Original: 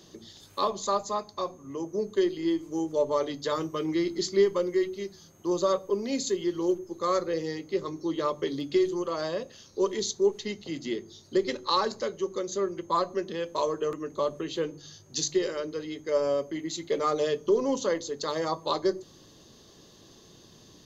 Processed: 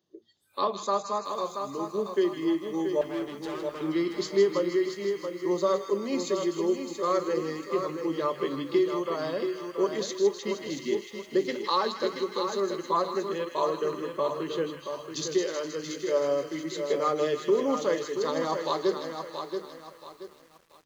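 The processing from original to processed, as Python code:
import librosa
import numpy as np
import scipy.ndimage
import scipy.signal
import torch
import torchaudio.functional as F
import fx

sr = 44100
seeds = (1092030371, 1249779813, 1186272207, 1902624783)

p1 = x + fx.echo_wet_highpass(x, sr, ms=158, feedback_pct=70, hz=1600.0, wet_db=-6.0, dry=0)
p2 = fx.noise_reduce_blind(p1, sr, reduce_db=24)
p3 = fx.tube_stage(p2, sr, drive_db=35.0, bias=0.75, at=(3.01, 3.81))
p4 = scipy.signal.sosfilt(scipy.signal.butter(2, 67.0, 'highpass', fs=sr, output='sos'), p3)
p5 = fx.bass_treble(p4, sr, bass_db=-1, treble_db=-7)
y = fx.echo_crushed(p5, sr, ms=679, feedback_pct=35, bits=9, wet_db=-7.0)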